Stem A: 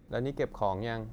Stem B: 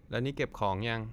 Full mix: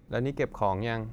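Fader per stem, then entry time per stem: −1.5, −3.5 decibels; 0.00, 0.00 seconds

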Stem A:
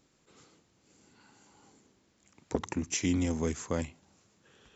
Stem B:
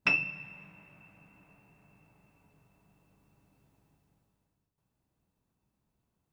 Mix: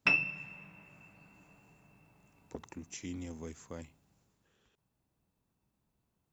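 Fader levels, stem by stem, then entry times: −13.0, −0.5 decibels; 0.00, 0.00 seconds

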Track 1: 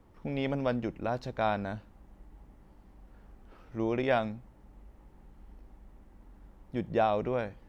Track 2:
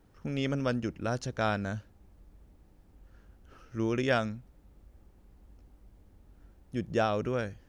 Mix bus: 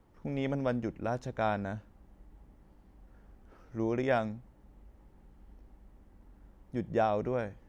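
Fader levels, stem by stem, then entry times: −4.0, −11.5 decibels; 0.00, 0.00 seconds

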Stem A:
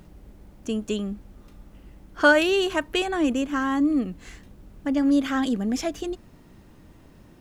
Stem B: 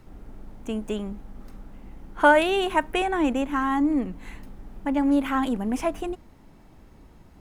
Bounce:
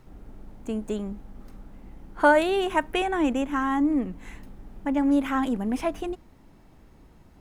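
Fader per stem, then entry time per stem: −15.0, −2.5 decibels; 0.00, 0.00 seconds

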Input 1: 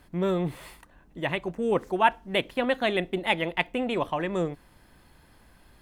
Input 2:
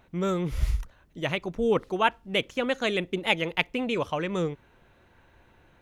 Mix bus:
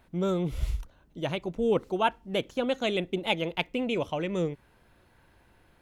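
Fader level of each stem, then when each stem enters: −10.0, −4.0 decibels; 0.00, 0.00 seconds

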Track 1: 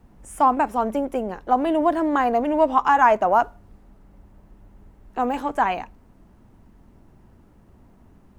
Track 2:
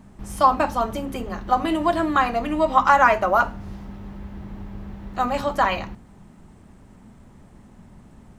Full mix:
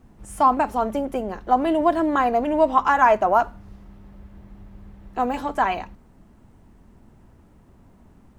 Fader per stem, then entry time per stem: −0.5, −11.0 decibels; 0.00, 0.00 seconds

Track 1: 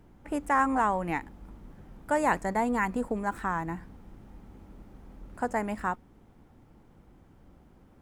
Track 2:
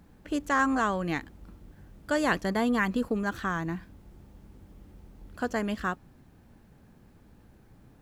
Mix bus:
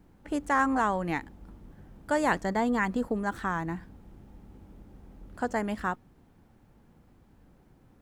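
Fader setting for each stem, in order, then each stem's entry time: −4.5, −7.0 decibels; 0.00, 0.00 seconds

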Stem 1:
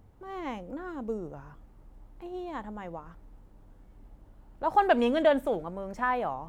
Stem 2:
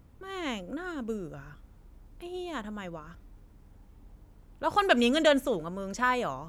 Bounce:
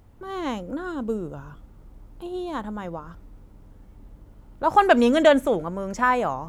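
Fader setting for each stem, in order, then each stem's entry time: +2.5, +0.5 decibels; 0.00, 0.00 seconds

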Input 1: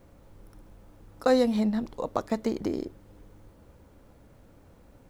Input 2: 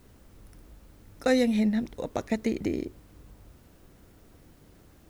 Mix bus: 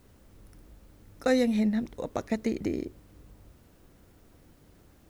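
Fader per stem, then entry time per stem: −16.0, −2.5 decibels; 0.00, 0.00 seconds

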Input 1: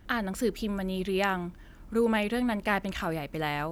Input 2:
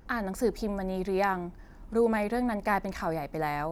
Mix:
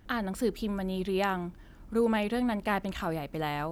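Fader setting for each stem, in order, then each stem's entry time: −3.0, −11.5 decibels; 0.00, 0.00 seconds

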